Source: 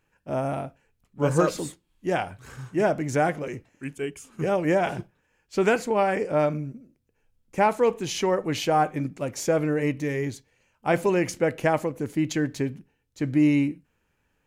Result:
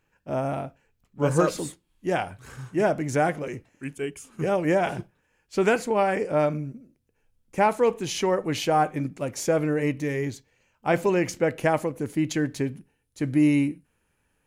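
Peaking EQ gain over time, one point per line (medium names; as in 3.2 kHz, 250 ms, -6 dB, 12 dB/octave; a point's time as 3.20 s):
peaking EQ 9.9 kHz 0.26 oct
-4.5 dB
from 1.26 s +4 dB
from 10.30 s -4.5 dB
from 11.56 s +6 dB
from 12.74 s +14.5 dB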